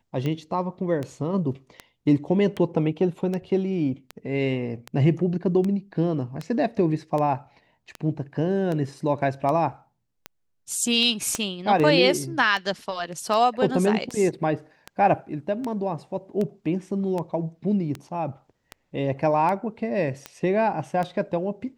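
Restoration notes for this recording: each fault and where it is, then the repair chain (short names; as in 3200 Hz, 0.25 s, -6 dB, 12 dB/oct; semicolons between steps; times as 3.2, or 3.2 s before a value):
tick 78 rpm -17 dBFS
11.35 pop -12 dBFS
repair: de-click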